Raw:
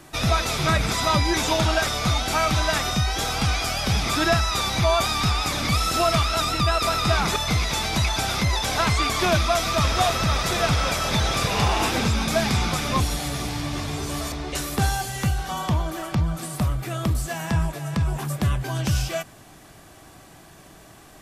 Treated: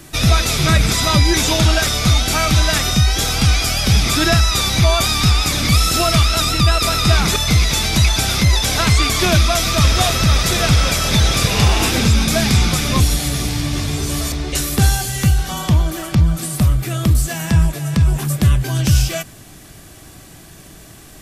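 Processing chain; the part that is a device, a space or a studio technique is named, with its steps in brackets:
smiley-face EQ (low-shelf EQ 120 Hz +4.5 dB; parametric band 890 Hz −7 dB 1.5 octaves; high-shelf EQ 6,000 Hz +4.5 dB)
level +7 dB

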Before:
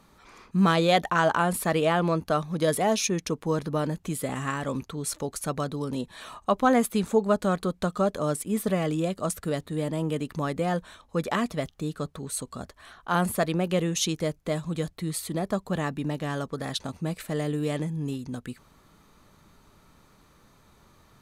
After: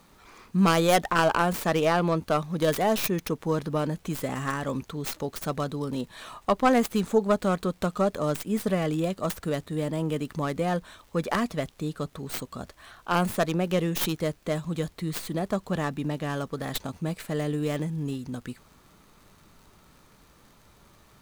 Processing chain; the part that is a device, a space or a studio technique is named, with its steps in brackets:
record under a worn stylus (stylus tracing distortion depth 0.25 ms; surface crackle; pink noise bed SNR 35 dB)

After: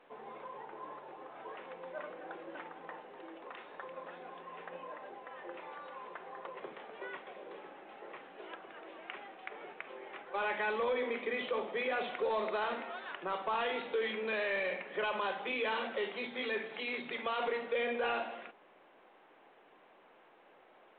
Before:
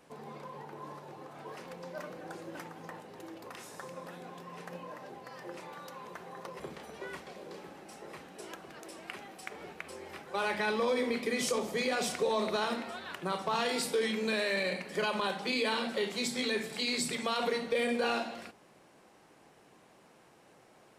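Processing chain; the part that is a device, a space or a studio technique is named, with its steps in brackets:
telephone (band-pass filter 390–3,300 Hz; soft clipping −25 dBFS, distortion −20 dB; mu-law 64 kbit/s 8,000 Hz)

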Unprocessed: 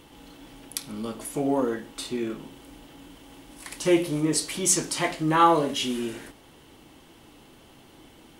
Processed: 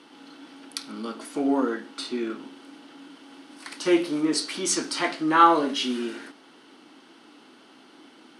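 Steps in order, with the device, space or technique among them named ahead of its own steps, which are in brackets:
television speaker (loudspeaker in its box 220–8,900 Hz, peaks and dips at 270 Hz +4 dB, 540 Hz −4 dB, 1,400 Hz +8 dB, 4,500 Hz +5 dB, 7,300 Hz −8 dB)

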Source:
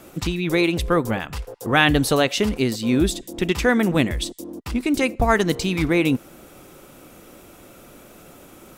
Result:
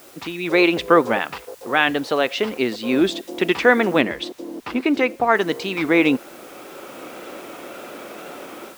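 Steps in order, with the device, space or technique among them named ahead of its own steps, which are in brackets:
dictaphone (band-pass filter 350–3,300 Hz; automatic gain control gain up to 14 dB; tape wow and flutter; white noise bed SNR 27 dB)
0:04.01–0:05.35: high-shelf EQ 4,500 Hz −7 dB
level −1 dB

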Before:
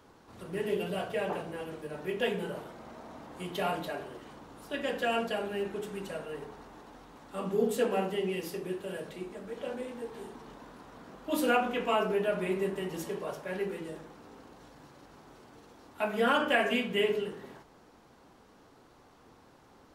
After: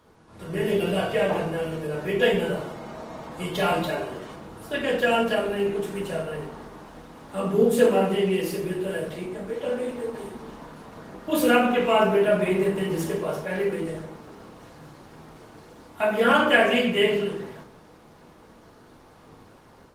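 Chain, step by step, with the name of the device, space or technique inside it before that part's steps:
speakerphone in a meeting room (convolution reverb RT60 0.60 s, pre-delay 3 ms, DRR 0 dB; automatic gain control gain up to 6 dB; Opus 24 kbit/s 48,000 Hz)

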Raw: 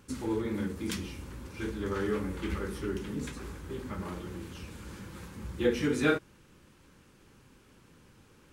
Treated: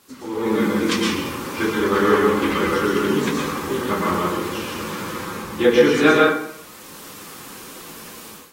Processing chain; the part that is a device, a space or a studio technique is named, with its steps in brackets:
filmed off a television (band-pass filter 230–6,300 Hz; parametric band 1,100 Hz +7.5 dB 0.3 octaves; convolution reverb RT60 0.65 s, pre-delay 110 ms, DRR 0 dB; white noise bed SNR 22 dB; automatic gain control gain up to 16 dB; level −1 dB; AAC 48 kbit/s 44,100 Hz)

